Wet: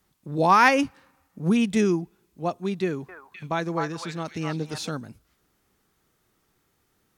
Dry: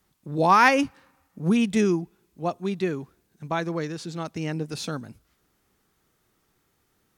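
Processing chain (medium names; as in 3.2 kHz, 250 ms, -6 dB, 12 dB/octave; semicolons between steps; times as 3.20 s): 2.83–4.89 s: repeats whose band climbs or falls 256 ms, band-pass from 1.1 kHz, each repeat 1.4 oct, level 0 dB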